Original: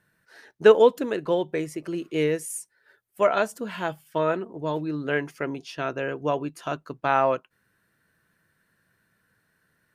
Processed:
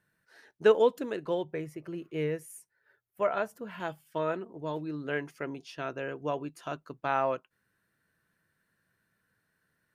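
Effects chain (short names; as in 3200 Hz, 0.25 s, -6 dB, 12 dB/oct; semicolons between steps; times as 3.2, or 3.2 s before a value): 1.44–3.8 graphic EQ 125/250/4000/8000 Hz +6/-4/-6/-9 dB; gain -7 dB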